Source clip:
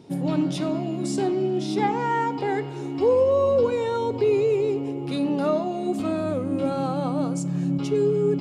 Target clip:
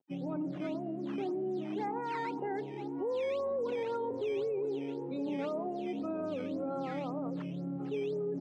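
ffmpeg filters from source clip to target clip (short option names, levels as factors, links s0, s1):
-filter_complex "[0:a]afftdn=nr=35:nf=-34,areverse,acompressor=mode=upward:threshold=0.0501:ratio=2.5,areverse,aeval=exprs='sgn(val(0))*max(abs(val(0))-0.00168,0)':c=same,asplit=2[s0][s1];[s1]adelay=962,lowpass=f=1000:p=1,volume=0.188,asplit=2[s2][s3];[s3]adelay=962,lowpass=f=1000:p=1,volume=0.5,asplit=2[s4][s5];[s5]adelay=962,lowpass=f=1000:p=1,volume=0.5,asplit=2[s6][s7];[s7]adelay=962,lowpass=f=1000:p=1,volume=0.5,asplit=2[s8][s9];[s9]adelay=962,lowpass=f=1000:p=1,volume=0.5[s10];[s0][s2][s4][s6][s8][s10]amix=inputs=6:normalize=0,acrusher=samples=9:mix=1:aa=0.000001:lfo=1:lforange=14.4:lforate=1.9,alimiter=limit=0.1:level=0:latency=1:release=14,highpass=200,lowpass=2200,volume=0.398"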